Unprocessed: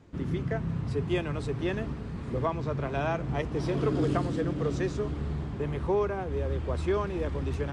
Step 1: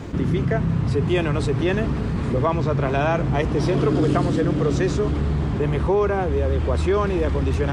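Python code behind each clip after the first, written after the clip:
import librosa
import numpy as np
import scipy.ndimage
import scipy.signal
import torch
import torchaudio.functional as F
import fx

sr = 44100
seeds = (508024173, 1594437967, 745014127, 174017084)

y = fx.env_flatten(x, sr, amount_pct=50)
y = y * 10.0 ** (6.5 / 20.0)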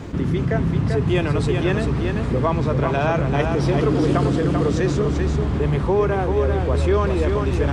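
y = x + 10.0 ** (-5.0 / 20.0) * np.pad(x, (int(390 * sr / 1000.0), 0))[:len(x)]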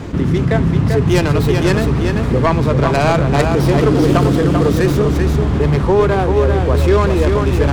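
y = fx.tracing_dist(x, sr, depth_ms=0.19)
y = y * 10.0 ** (6.0 / 20.0)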